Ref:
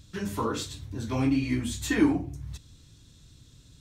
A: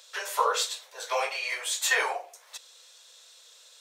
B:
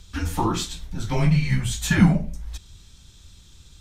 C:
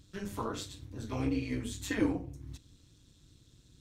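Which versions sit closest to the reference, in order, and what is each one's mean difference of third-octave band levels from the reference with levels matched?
C, B, A; 1.5 dB, 3.5 dB, 14.0 dB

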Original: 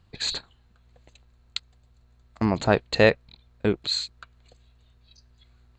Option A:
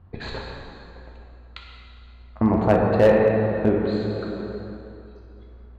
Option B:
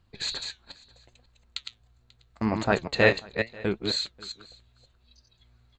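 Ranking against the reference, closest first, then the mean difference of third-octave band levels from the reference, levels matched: B, A; 4.0 dB, 10.0 dB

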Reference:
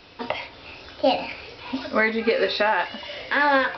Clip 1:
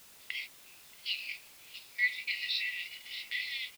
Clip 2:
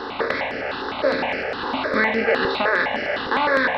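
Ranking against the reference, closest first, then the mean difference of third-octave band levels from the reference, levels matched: 2, 1; 6.5 dB, 15.5 dB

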